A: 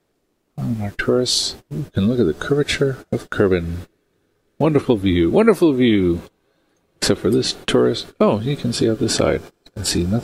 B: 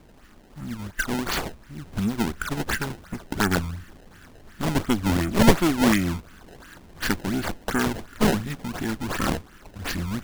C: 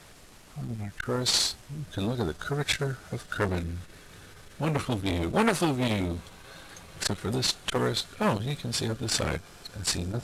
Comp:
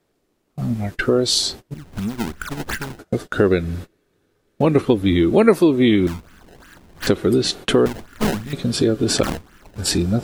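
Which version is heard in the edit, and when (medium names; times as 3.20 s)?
A
1.74–2.99 s: from B
6.07–7.07 s: from B
7.86–8.53 s: from B
9.23–9.78 s: from B
not used: C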